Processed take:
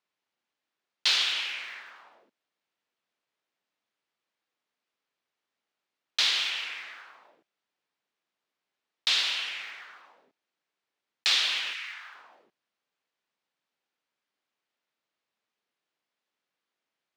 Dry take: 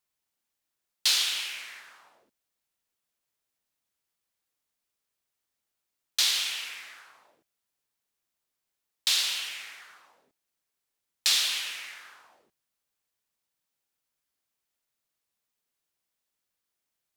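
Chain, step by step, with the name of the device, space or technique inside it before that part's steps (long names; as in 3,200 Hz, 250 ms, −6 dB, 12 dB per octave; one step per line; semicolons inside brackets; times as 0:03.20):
0:11.73–0:12.13: high-pass filter 1,300 Hz → 610 Hz 24 dB per octave
early digital voice recorder (band-pass filter 200–3,600 Hz; one scale factor per block 7 bits)
level +4 dB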